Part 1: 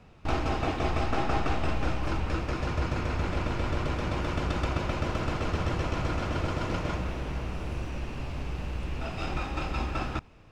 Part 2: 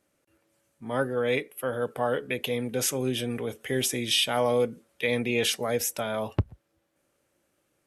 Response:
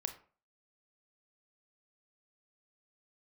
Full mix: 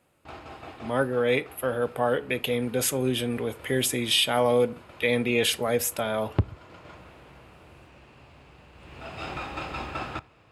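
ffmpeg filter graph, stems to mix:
-filter_complex "[0:a]highpass=110,equalizer=f=210:t=o:w=1.6:g=-6.5,volume=-0.5dB,afade=t=in:st=8.73:d=0.55:silence=0.251189,asplit=2[a][b];[b]volume=-11dB[c];[1:a]volume=0dB,asplit=3[d][e][f];[e]volume=-9dB[g];[f]apad=whole_len=463752[h];[a][h]sidechaincompress=threshold=-31dB:ratio=8:attack=30:release=655[i];[2:a]atrim=start_sample=2205[j];[c][g]amix=inputs=2:normalize=0[k];[k][j]afir=irnorm=-1:irlink=0[l];[i][d][l]amix=inputs=3:normalize=0,equalizer=f=5.8k:t=o:w=0.28:g=-8.5"

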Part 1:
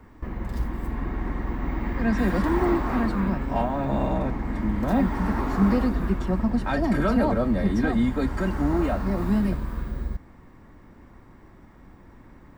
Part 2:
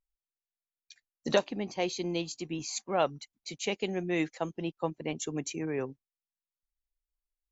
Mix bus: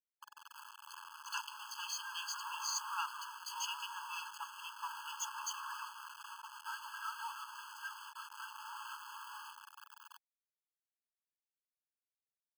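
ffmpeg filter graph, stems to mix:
-filter_complex "[0:a]volume=-12dB[a];[1:a]asoftclip=type=tanh:threshold=-26dB,volume=1.5dB[b];[a][b]amix=inputs=2:normalize=0,aeval=exprs='val(0)*gte(abs(val(0)),0.0126)':c=same,afftfilt=real='re*eq(mod(floor(b*sr/1024/860),2),1)':imag='im*eq(mod(floor(b*sr/1024/860),2),1)':win_size=1024:overlap=0.75"

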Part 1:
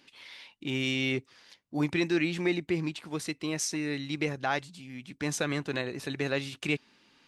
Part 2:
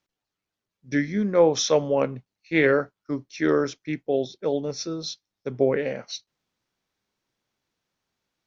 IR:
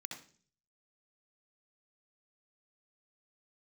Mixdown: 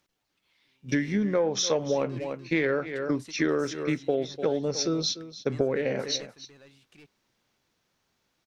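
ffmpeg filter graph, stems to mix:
-filter_complex "[0:a]asoftclip=type=tanh:threshold=-27dB,volume=-8.5dB,asplit=2[a][b];[b]volume=-12dB[c];[1:a]acontrast=32,volume=1dB,asplit=3[d][e][f];[e]volume=-17dB[g];[f]apad=whole_len=320958[h];[a][h]sidechaingate=range=-35dB:threshold=-37dB:ratio=16:detection=peak[i];[c][g]amix=inputs=2:normalize=0,aecho=0:1:295:1[j];[i][d][j]amix=inputs=3:normalize=0,acompressor=threshold=-23dB:ratio=6"

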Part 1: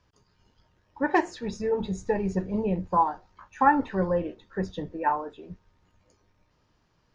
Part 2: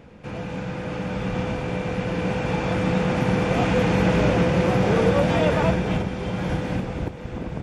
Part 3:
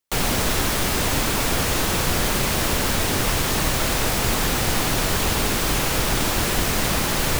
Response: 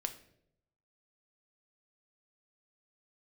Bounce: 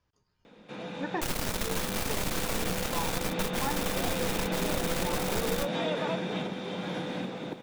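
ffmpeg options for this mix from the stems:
-filter_complex "[0:a]volume=-9.5dB,asplit=2[a][b];[1:a]highpass=f=180:w=0.5412,highpass=f=180:w=1.3066,equalizer=f=3.7k:w=6.3:g=13.5,adelay=450,volume=-6dB[c];[2:a]aeval=exprs='max(val(0),0)':c=same,adelay=1100,volume=-2.5dB[d];[b]apad=whole_len=374424[e];[d][e]sidechaingate=range=-43dB:threshold=-60dB:ratio=16:detection=peak[f];[a][c][f]amix=inputs=3:normalize=0,acompressor=threshold=-28dB:ratio=2.5"

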